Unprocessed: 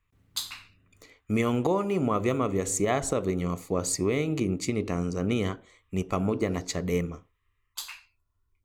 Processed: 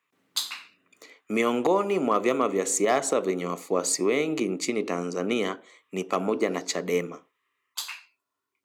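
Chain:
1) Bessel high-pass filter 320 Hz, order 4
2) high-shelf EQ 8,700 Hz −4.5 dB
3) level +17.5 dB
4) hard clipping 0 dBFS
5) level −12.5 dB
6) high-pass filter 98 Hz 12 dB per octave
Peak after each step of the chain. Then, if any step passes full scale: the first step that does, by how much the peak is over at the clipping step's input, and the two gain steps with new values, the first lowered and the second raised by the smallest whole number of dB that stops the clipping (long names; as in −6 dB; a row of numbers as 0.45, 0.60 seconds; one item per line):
−12.0, −12.0, +5.5, 0.0, −12.5, −11.0 dBFS
step 3, 5.5 dB
step 3 +11.5 dB, step 5 −6.5 dB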